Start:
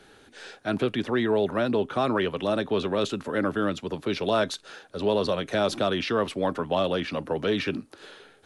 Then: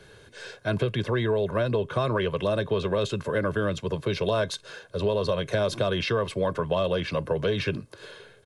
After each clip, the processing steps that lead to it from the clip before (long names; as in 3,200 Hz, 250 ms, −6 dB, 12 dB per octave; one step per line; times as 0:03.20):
parametric band 120 Hz +9.5 dB 1.3 octaves
comb filter 1.9 ms, depth 64%
downward compressor, threshold −21 dBFS, peak gain reduction 6 dB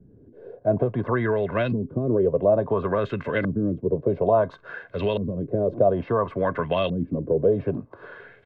hollow resonant body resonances 260/700/2,000 Hz, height 7 dB
auto-filter low-pass saw up 0.58 Hz 210–3,100 Hz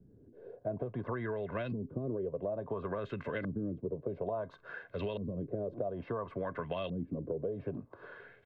downward compressor, threshold −25 dBFS, peak gain reduction 11 dB
level −8 dB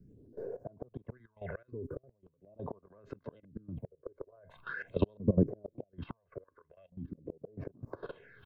gate with flip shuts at −28 dBFS, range −33 dB
all-pass phaser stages 6, 0.42 Hz, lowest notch 190–3,400 Hz
output level in coarse steps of 18 dB
level +14 dB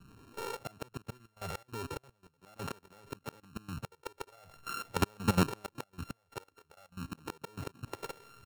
samples sorted by size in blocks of 32 samples
in parallel at −11.5 dB: wave folding −29.5 dBFS
on the sum: level −1 dB